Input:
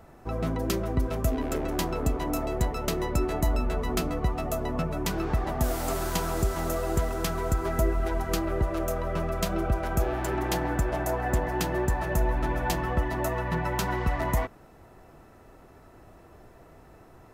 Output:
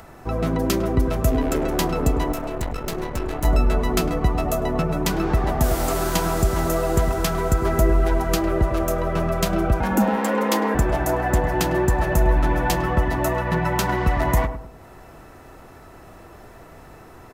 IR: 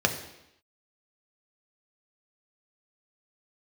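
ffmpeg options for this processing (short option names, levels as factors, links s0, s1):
-filter_complex "[0:a]asettb=1/sr,asplit=3[s0][s1][s2];[s0]atrim=end=9.804[s3];[s1]atrim=start=9.8:end=10.75,asetpts=PTS-STARTPTS,afade=t=in:d=0.004:c=qsin,afade=t=out:st=0.946:d=0.004:c=qsin,afreqshift=150[s4];[s2]atrim=start=10.746[s5];[s3][s4]acrossfade=d=0.004:c1=hsin:c2=qsin[s6];[s6][s5]acrossfade=d=0.004:c1=qsin:c2=hsin,asplit=2[s7][s8];[s8]adelay=103,lowpass=f=870:p=1,volume=0.398,asplit=2[s9][s10];[s10]adelay=103,lowpass=f=870:p=1,volume=0.39,asplit=2[s11][s12];[s12]adelay=103,lowpass=f=870:p=1,volume=0.39,asplit=2[s13][s14];[s14]adelay=103,lowpass=f=870:p=1,volume=0.39[s15];[s7][s9][s11][s13][s15]amix=inputs=5:normalize=0,asettb=1/sr,asplit=3[s16][s17][s18];[s16]atrim=end=2.324[s19];[s17]atrim=start=2.32:end=3.45,asetpts=PTS-STARTPTS,afade=t=in:d=0.004:c=qsin,afade=t=out:st=1.126:d=0.004:c=qsin,aeval=exprs='0.237*(cos(1*acos(clip(val(0)/0.237,-1,1)))-cos(1*PI/2))+0.106*(cos(3*acos(clip(val(0)/0.237,-1,1)))-cos(3*PI/2))+0.0422*(cos(5*acos(clip(val(0)/0.237,-1,1)))-cos(5*PI/2))+0.0119*(cos(8*acos(clip(val(0)/0.237,-1,1)))-cos(8*PI/2))':c=same[s20];[s18]atrim=start=3.446[s21];[s19][s20]acrossfade=d=0.004:c1=hsin:c2=qsin[s22];[s22][s21]acrossfade=d=0.004:c1=qsin:c2=hsin,acrossover=split=930[s23][s24];[s24]acompressor=mode=upward:threshold=0.00282:ratio=2.5[s25];[s23][s25]amix=inputs=2:normalize=0,volume=2.11"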